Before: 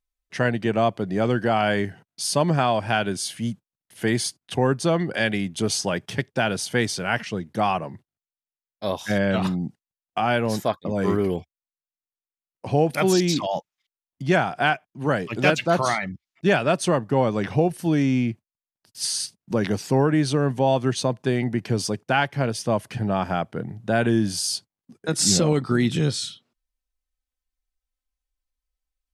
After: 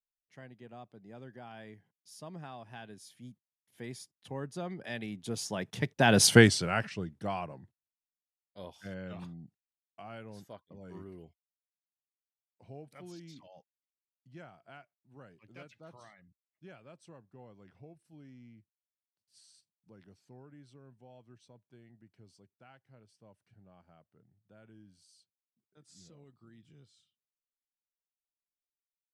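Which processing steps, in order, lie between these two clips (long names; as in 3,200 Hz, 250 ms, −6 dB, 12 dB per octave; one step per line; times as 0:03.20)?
source passing by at 0:06.28, 20 m/s, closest 1.6 metres
low-shelf EQ 210 Hz +4.5 dB
level +8 dB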